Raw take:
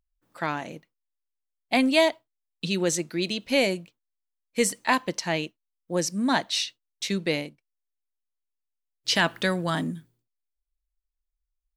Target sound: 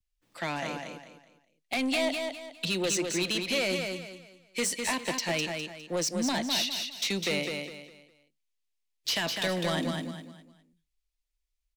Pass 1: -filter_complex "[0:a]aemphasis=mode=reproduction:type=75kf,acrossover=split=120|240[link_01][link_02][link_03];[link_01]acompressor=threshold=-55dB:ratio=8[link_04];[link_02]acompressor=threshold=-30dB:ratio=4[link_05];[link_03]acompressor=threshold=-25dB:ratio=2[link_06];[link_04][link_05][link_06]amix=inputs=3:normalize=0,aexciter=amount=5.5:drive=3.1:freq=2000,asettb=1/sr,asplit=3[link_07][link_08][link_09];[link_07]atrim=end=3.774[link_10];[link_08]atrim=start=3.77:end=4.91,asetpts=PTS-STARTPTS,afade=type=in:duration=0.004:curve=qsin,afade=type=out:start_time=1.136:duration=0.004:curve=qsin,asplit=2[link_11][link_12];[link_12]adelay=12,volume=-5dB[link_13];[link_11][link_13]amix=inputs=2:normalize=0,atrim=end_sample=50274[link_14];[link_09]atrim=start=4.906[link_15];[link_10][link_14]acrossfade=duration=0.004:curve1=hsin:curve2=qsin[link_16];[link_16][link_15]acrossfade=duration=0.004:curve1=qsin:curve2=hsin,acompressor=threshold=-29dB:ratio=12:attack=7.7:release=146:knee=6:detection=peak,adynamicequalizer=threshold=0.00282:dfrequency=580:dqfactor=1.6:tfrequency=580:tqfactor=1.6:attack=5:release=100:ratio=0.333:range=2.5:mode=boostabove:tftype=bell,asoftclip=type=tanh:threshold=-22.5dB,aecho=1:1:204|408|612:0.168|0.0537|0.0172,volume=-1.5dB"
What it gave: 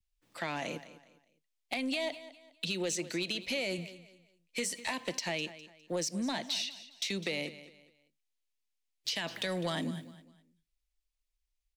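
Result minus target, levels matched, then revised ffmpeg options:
downward compressor: peak gain reduction +9.5 dB; echo-to-direct −10.5 dB
-filter_complex "[0:a]aemphasis=mode=reproduction:type=75kf,acrossover=split=120|240[link_01][link_02][link_03];[link_01]acompressor=threshold=-55dB:ratio=8[link_04];[link_02]acompressor=threshold=-30dB:ratio=4[link_05];[link_03]acompressor=threshold=-25dB:ratio=2[link_06];[link_04][link_05][link_06]amix=inputs=3:normalize=0,aexciter=amount=5.5:drive=3.1:freq=2000,asettb=1/sr,asplit=3[link_07][link_08][link_09];[link_07]atrim=end=3.774[link_10];[link_08]atrim=start=3.77:end=4.91,asetpts=PTS-STARTPTS,afade=type=in:duration=0.004:curve=qsin,afade=type=out:start_time=1.136:duration=0.004:curve=qsin,asplit=2[link_11][link_12];[link_12]adelay=12,volume=-5dB[link_13];[link_11][link_13]amix=inputs=2:normalize=0,atrim=end_sample=50274[link_14];[link_09]atrim=start=4.906[link_15];[link_10][link_14]acrossfade=duration=0.004:curve1=hsin:curve2=qsin[link_16];[link_16][link_15]acrossfade=duration=0.004:curve1=qsin:curve2=hsin,acompressor=threshold=-18.5dB:ratio=12:attack=7.7:release=146:knee=6:detection=peak,adynamicequalizer=threshold=0.00282:dfrequency=580:dqfactor=1.6:tfrequency=580:tqfactor=1.6:attack=5:release=100:ratio=0.333:range=2.5:mode=boostabove:tftype=bell,asoftclip=type=tanh:threshold=-22.5dB,aecho=1:1:204|408|612|816:0.562|0.18|0.0576|0.0184,volume=-1.5dB"

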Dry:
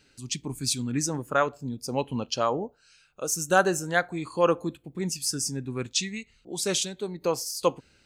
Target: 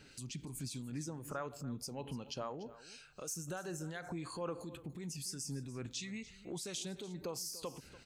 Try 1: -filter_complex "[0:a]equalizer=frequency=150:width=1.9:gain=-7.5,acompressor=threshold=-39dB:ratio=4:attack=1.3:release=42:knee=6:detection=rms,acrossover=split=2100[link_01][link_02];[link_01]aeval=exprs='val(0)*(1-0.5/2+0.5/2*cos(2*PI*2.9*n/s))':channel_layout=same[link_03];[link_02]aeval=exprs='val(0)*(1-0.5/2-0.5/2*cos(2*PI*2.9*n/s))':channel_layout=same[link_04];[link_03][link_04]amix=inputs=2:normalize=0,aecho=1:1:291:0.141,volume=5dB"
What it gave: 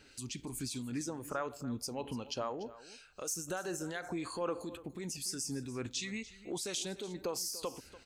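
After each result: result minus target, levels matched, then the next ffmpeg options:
125 Hz band −5.5 dB; downward compressor: peak gain reduction −4.5 dB
-filter_complex "[0:a]equalizer=frequency=150:width=1.9:gain=3,acompressor=threshold=-39dB:ratio=4:attack=1.3:release=42:knee=6:detection=rms,acrossover=split=2100[link_01][link_02];[link_01]aeval=exprs='val(0)*(1-0.5/2+0.5/2*cos(2*PI*2.9*n/s))':channel_layout=same[link_03];[link_02]aeval=exprs='val(0)*(1-0.5/2-0.5/2*cos(2*PI*2.9*n/s))':channel_layout=same[link_04];[link_03][link_04]amix=inputs=2:normalize=0,aecho=1:1:291:0.141,volume=5dB"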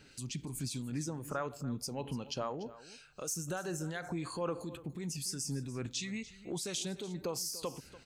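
downward compressor: peak gain reduction −4.5 dB
-filter_complex "[0:a]equalizer=frequency=150:width=1.9:gain=3,acompressor=threshold=-45dB:ratio=4:attack=1.3:release=42:knee=6:detection=rms,acrossover=split=2100[link_01][link_02];[link_01]aeval=exprs='val(0)*(1-0.5/2+0.5/2*cos(2*PI*2.9*n/s))':channel_layout=same[link_03];[link_02]aeval=exprs='val(0)*(1-0.5/2-0.5/2*cos(2*PI*2.9*n/s))':channel_layout=same[link_04];[link_03][link_04]amix=inputs=2:normalize=0,aecho=1:1:291:0.141,volume=5dB"

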